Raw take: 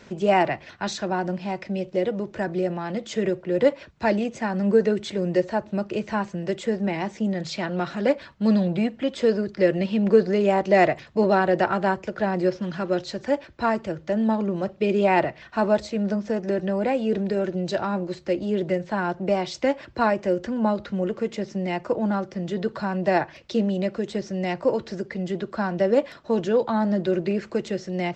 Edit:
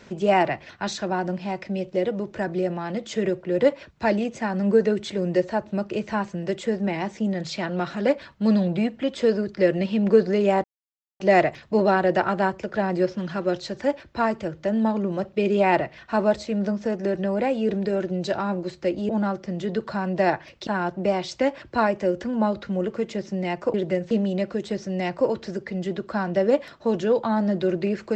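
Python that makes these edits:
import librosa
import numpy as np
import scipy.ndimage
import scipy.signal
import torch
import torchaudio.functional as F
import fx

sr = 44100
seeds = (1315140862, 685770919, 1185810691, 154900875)

y = fx.edit(x, sr, fx.insert_silence(at_s=10.64, length_s=0.56),
    fx.swap(start_s=18.53, length_s=0.37, other_s=21.97, other_length_s=1.58), tone=tone)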